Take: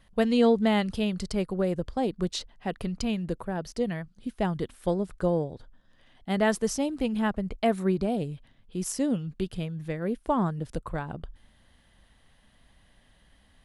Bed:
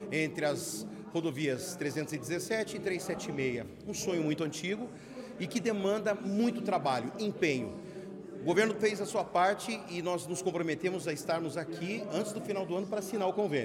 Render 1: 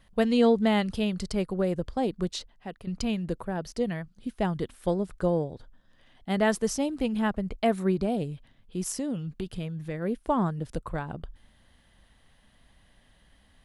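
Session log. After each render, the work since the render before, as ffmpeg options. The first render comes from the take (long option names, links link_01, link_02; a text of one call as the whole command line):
ffmpeg -i in.wav -filter_complex "[0:a]asettb=1/sr,asplit=3[link_01][link_02][link_03];[link_01]atrim=end=8.814[link_04];[link_02]atrim=start=8.81:end=9.95,asetpts=PTS-STARTPTS,afade=type=in:duration=0.004:curve=qsin,afade=type=out:start_time=1.136:duration=0.004:curve=qsin,acompressor=threshold=-27dB:ratio=6:attack=3.2:release=140:knee=1:detection=peak[link_05];[link_03]atrim=start=9.946[link_06];[link_04][link_05]acrossfade=duration=0.004:curve1=hsin:curve2=qsin[link_07];[link_07][link_06]acrossfade=duration=0.004:curve1=qsin:curve2=hsin,asplit=2[link_08][link_09];[link_08]atrim=end=2.87,asetpts=PTS-STARTPTS,afade=type=out:start_time=2.16:duration=0.71:silence=0.237137[link_10];[link_09]atrim=start=2.87,asetpts=PTS-STARTPTS,afade=type=in:duration=0.004:curve=hsin:silence=0.237137[link_11];[link_10][link_11]concat=n=2:v=0:a=1" out.wav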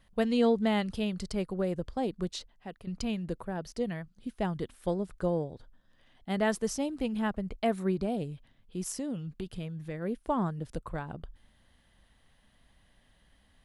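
ffmpeg -i in.wav -af "volume=-4dB" out.wav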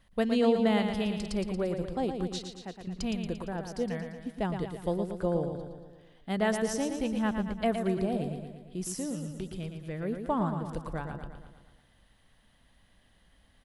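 ffmpeg -i in.wav -af "aecho=1:1:115|230|345|460|575|690|805:0.447|0.255|0.145|0.0827|0.0472|0.0269|0.0153" out.wav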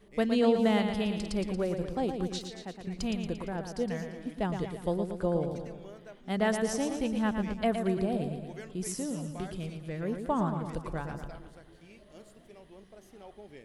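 ffmpeg -i in.wav -i bed.wav -filter_complex "[1:a]volume=-18.5dB[link_01];[0:a][link_01]amix=inputs=2:normalize=0" out.wav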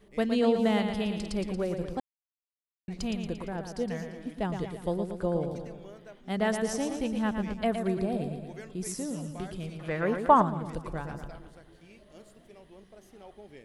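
ffmpeg -i in.wav -filter_complex "[0:a]asettb=1/sr,asplit=3[link_01][link_02][link_03];[link_01]atrim=end=7.784[link_04];[link_02]atrim=start=7.78:end=9.14,asetpts=PTS-STARTPTS,afade=type=in:duration=0.004:curve=qsin,afade=type=out:start_time=1.356:duration=0.004:curve=qsin,bandreject=frequency=3000:width=16[link_05];[link_03]atrim=start=9.136[link_06];[link_04][link_05]acrossfade=duration=0.004:curve1=hsin:curve2=qsin[link_07];[link_07][link_06]acrossfade=duration=0.004:curve1=qsin:curve2=hsin,asettb=1/sr,asplit=3[link_08][link_09][link_10];[link_08]atrim=end=9.794[link_11];[link_09]atrim=start=9.79:end=10.42,asetpts=PTS-STARTPTS,afade=type=in:duration=0.004:curve=qsin,afade=type=out:start_time=0.626:duration=0.004:curve=qsin,equalizer=frequency=1200:width_type=o:width=2.6:gain=14.5[link_12];[link_10]atrim=start=10.416[link_13];[link_11][link_12]acrossfade=duration=0.004:curve1=hsin:curve2=qsin[link_14];[link_14][link_13]acrossfade=duration=0.004:curve1=qsin:curve2=hsin,asplit=3[link_15][link_16][link_17];[link_15]atrim=end=2,asetpts=PTS-STARTPTS,afade=type=out:start_time=1.996:duration=0.004:curve=hsin[link_18];[link_16]atrim=start=2:end=2.88,asetpts=PTS-STARTPTS,volume=0[link_19];[link_17]atrim=start=2.88,asetpts=PTS-STARTPTS,afade=type=in:duration=0.004:curve=hsin[link_20];[link_18][link_19][link_20]concat=n=3:v=0:a=1" out.wav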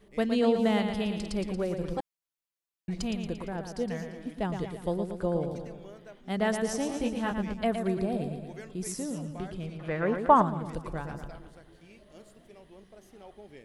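ffmpeg -i in.wav -filter_complex "[0:a]asettb=1/sr,asplit=3[link_01][link_02][link_03];[link_01]atrim=end=1.834[link_04];[link_02]atrim=start=1.83:end=3.02,asetpts=PTS-STARTPTS,afade=type=in:duration=0.004:curve=qsin,afade=type=out:start_time=1.186:duration=0.004:curve=qsin,aecho=1:1:6:0.76,atrim=end_sample=52479[link_05];[link_03]atrim=start=3.016[link_06];[link_04][link_05]acrossfade=duration=0.004:curve1=hsin:curve2=qsin[link_07];[link_07][link_06]acrossfade=duration=0.004:curve1=qsin:curve2=hsin,asettb=1/sr,asplit=3[link_08][link_09][link_10];[link_08]atrim=end=6.874[link_11];[link_09]atrim=start=6.87:end=7.34,asetpts=PTS-STARTPTS,afade=type=in:duration=0.004:curve=qsin,afade=type=out:start_time=0.466:duration=0.004:curve=qsin,asplit=2[link_12][link_13];[link_13]adelay=21,volume=-4dB[link_14];[link_12][link_14]amix=inputs=2:normalize=0,atrim=end_sample=20727[link_15];[link_10]atrim=start=7.336[link_16];[link_11][link_15]acrossfade=duration=0.004:curve1=hsin:curve2=qsin[link_17];[link_17][link_16]acrossfade=duration=0.004:curve1=qsin:curve2=hsin,asettb=1/sr,asplit=3[link_18][link_19][link_20];[link_18]atrim=end=9.184[link_21];[link_19]atrim=start=9.18:end=10.35,asetpts=PTS-STARTPTS,afade=type=in:duration=0.004:curve=qsin,afade=type=out:start_time=1.166:duration=0.004:curve=qsin,aemphasis=mode=reproduction:type=cd[link_22];[link_20]atrim=start=10.346[link_23];[link_21][link_22]acrossfade=duration=0.004:curve1=hsin:curve2=qsin[link_24];[link_24][link_23]acrossfade=duration=0.004:curve1=qsin:curve2=hsin" out.wav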